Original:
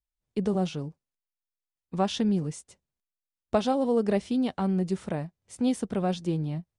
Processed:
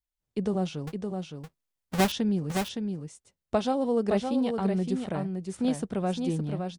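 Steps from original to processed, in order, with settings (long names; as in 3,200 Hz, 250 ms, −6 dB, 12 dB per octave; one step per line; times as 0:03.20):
0:00.87–0:02.12: each half-wave held at its own peak
single-tap delay 565 ms −5.5 dB
level −1.5 dB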